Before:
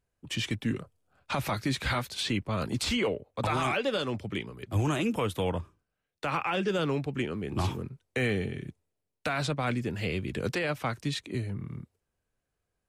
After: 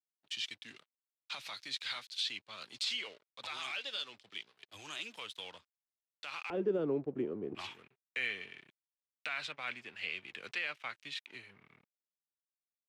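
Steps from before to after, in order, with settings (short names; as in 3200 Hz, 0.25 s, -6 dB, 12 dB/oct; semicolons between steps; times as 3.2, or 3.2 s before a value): crossover distortion -46.5 dBFS; band-pass 3900 Hz, Q 1.7, from 6.5 s 380 Hz, from 7.55 s 2600 Hz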